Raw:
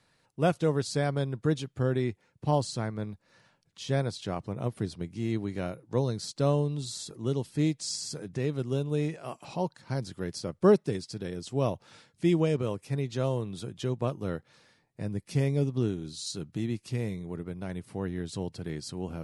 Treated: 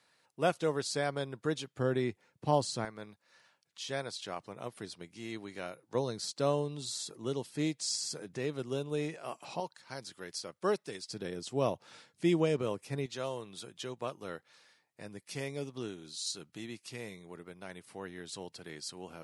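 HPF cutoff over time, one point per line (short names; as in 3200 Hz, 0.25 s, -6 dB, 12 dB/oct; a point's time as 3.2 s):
HPF 6 dB/oct
550 Hz
from 1.79 s 270 Hz
from 2.85 s 1000 Hz
from 5.95 s 460 Hz
from 9.6 s 1300 Hz
from 11.09 s 310 Hz
from 13.06 s 1000 Hz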